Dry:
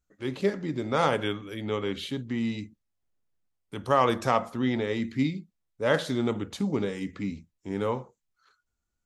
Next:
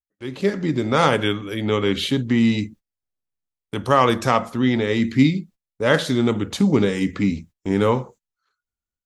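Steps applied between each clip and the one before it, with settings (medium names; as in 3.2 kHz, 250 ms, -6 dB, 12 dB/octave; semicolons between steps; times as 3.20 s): gate -53 dBFS, range -21 dB; dynamic bell 700 Hz, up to -4 dB, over -36 dBFS, Q 0.87; level rider gain up to 12.5 dB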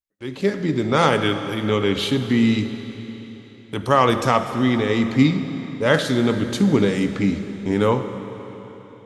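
reverberation RT60 4.0 s, pre-delay 20 ms, DRR 9 dB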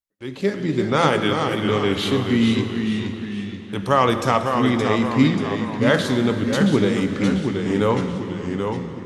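ever faster or slower copies 319 ms, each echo -1 st, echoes 3, each echo -6 dB; trim -1 dB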